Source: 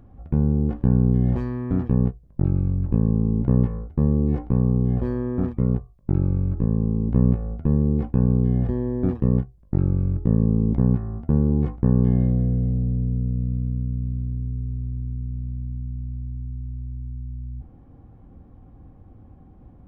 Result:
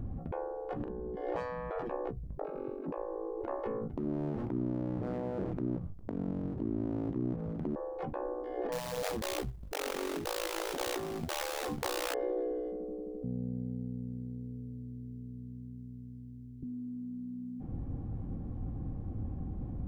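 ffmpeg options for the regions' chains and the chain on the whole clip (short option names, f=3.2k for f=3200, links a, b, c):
-filter_complex "[0:a]asettb=1/sr,asplit=3[a][b][c];[a]atrim=end=0.764[d];[b]atrim=start=0.76:end=1.17,asetpts=PTS-STARTPTS,afade=t=in:d=0.004:c=qsin,afade=t=out:st=0.406:d=0.004:c=qsin,acompressor=threshold=-32dB:ratio=4:attack=3.2:release=140:knee=1:detection=peak,asplit=2[e][f];[f]adelay=41,volume=-5.5dB[g];[e][g]amix=inputs=2:normalize=0,atrim=end_sample=18081[h];[c]atrim=start=1.166[i];[d][h]acrossfade=d=0.004:c1=hsin:c2=qsin[j];[j][i]acrossfade=d=0.004:c1=qsin:c2=hsin,asettb=1/sr,asplit=3[k][l][m];[k]atrim=end=3.954[n];[l]atrim=start=3.95:end=7.76,asetpts=PTS-STARTPTS,afade=t=in:d=0.004:c=qsin,afade=t=out:st=3.806:d=0.004:c=qsin,acompressor=threshold=-31dB:ratio=12:attack=3.2:release=140:knee=1:detection=peak,aeval=exprs='abs(val(0))':c=same[o];[m]atrim=start=7.756[p];[n][o]acrossfade=d=0.004:c1=hsin:c2=qsin[q];[q][p]acrossfade=d=0.004:c1=qsin:c2=hsin,asettb=1/sr,asplit=3[r][s][t];[r]atrim=end=8.724[u];[s]atrim=start=8.72:end=12.14,asetpts=PTS-STARTPTS,afade=t=in:d=0.004:c=qsin,afade=t=out:st=3.416:d=0.004:c=qsin,lowshelf=f=200:g=-3,acrusher=bits=4:mode=log:mix=0:aa=0.000001[v];[t]atrim=start=12.136[w];[u][v]acrossfade=d=0.004:c1=hsin:c2=qsin[x];[x][w]acrossfade=d=0.004:c1=qsin:c2=hsin,asettb=1/sr,asplit=3[y][z][aa];[y]atrim=end=13.234[ab];[z]atrim=start=13.23:end=16.63,asetpts=PTS-STARTPTS,afade=t=in:d=0.004:c=qsin,afade=t=out:st=3.396:d=0.004:c=qsin,highpass=500,bandreject=f=1.3k:w=9.5[ac];[aa]atrim=start=16.626[ad];[ab][ac]acrossfade=d=0.004:c1=hsin:c2=qsin[ae];[ae][ad]acrossfade=d=0.004:c1=qsin:c2=hsin,lowshelf=f=470:g=11,afftfilt=real='re*lt(hypot(re,im),0.224)':imag='im*lt(hypot(re,im),0.224)':win_size=1024:overlap=0.75"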